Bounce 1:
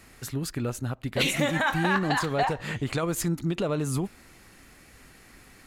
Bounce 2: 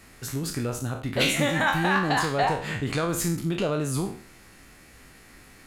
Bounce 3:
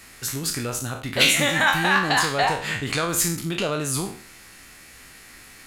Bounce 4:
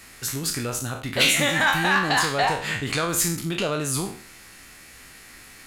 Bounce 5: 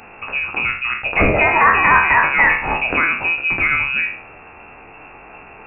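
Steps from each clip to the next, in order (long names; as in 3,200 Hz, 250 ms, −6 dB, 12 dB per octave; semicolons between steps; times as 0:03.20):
peak hold with a decay on every bin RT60 0.47 s
tilt shelving filter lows −5 dB, about 1,100 Hz; level +3.5 dB
soft clipping −9.5 dBFS, distortion −21 dB
voice inversion scrambler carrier 2,700 Hz; level +8.5 dB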